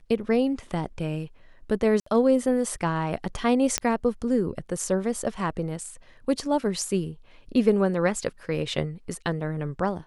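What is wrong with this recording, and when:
2–2.06 gap 64 ms
3.78 pop -6 dBFS

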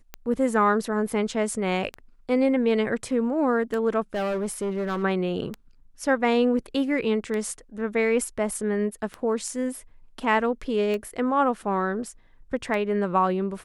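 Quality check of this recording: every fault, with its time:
tick 33 1/3 rpm -18 dBFS
4.14–5.04 clipped -23.5 dBFS

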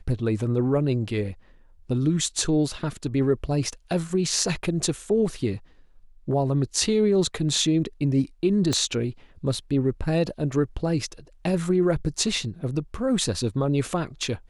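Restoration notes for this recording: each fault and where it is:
8.73 pop -12 dBFS

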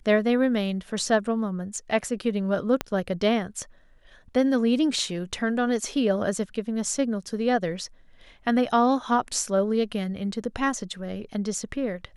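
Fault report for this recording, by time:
2.81 pop -11 dBFS

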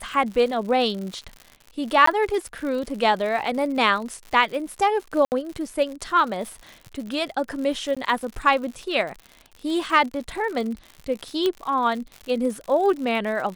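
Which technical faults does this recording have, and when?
crackle 95/s -31 dBFS
2.06–2.07 gap 14 ms
5.25–5.32 gap 69 ms
7.95–7.97 gap 16 ms
11.46 pop -11 dBFS

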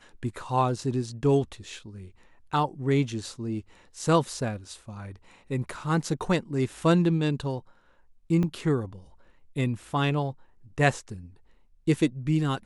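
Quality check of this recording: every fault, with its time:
8.43 gap 4.1 ms

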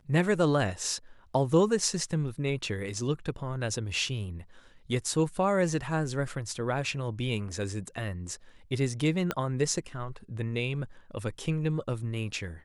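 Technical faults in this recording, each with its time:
9.31 pop -14 dBFS

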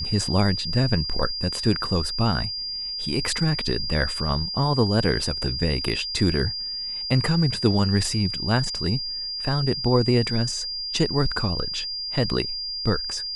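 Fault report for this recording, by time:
tone 4800 Hz -28 dBFS

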